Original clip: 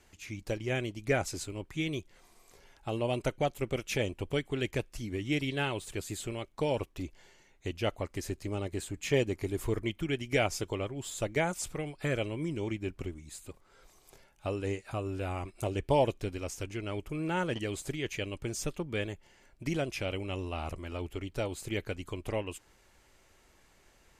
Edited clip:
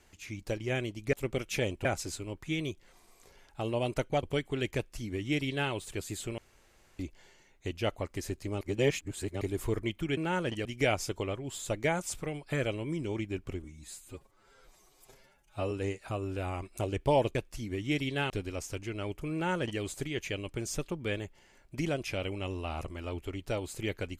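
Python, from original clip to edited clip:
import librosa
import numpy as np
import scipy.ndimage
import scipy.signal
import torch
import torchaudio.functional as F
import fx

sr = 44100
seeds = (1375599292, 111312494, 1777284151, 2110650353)

y = fx.edit(x, sr, fx.move(start_s=3.51, length_s=0.72, to_s=1.13),
    fx.duplicate(start_s=4.76, length_s=0.95, to_s=16.18),
    fx.room_tone_fill(start_s=6.38, length_s=0.61),
    fx.reverse_span(start_s=8.61, length_s=0.8),
    fx.stretch_span(start_s=13.16, length_s=1.38, factor=1.5),
    fx.duplicate(start_s=17.21, length_s=0.48, to_s=10.17), tone=tone)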